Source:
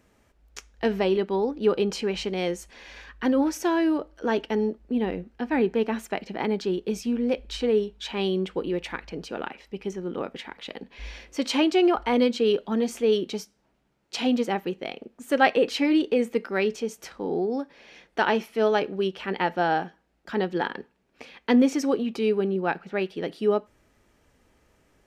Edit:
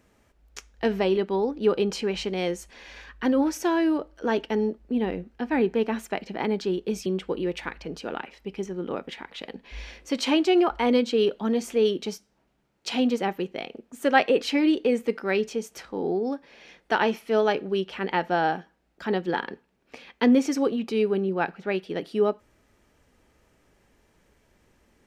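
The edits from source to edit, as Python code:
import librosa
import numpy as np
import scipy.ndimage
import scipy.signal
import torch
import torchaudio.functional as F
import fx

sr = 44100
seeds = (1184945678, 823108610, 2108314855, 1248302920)

y = fx.edit(x, sr, fx.cut(start_s=7.06, length_s=1.27), tone=tone)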